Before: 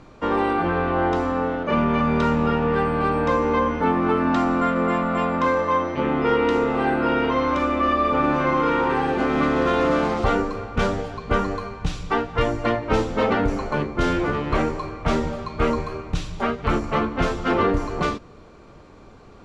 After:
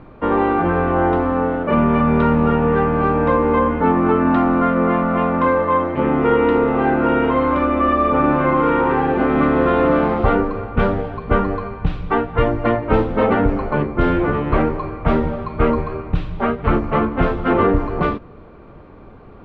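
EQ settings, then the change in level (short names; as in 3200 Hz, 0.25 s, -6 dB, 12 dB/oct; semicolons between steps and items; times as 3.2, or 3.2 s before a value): air absorption 480 m; +6.0 dB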